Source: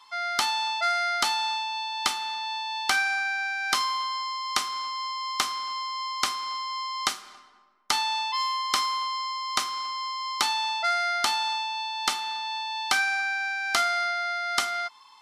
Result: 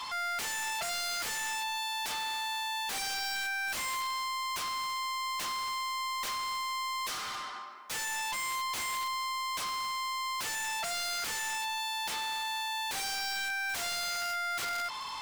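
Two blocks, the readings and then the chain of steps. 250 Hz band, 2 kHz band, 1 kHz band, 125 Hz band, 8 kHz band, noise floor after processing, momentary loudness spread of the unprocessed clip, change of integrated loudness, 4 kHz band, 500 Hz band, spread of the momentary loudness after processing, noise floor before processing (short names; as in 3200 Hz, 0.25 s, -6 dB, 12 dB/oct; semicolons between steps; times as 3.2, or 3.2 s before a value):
-6.5 dB, -6.5 dB, -6.5 dB, n/a, -2.0 dB, -40 dBFS, 7 LU, -6.0 dB, -6.5 dB, -7.5 dB, 1 LU, -53 dBFS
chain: wrapped overs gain 23.5 dB; overdrive pedal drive 33 dB, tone 6200 Hz, clips at -23.5 dBFS; gain -6.5 dB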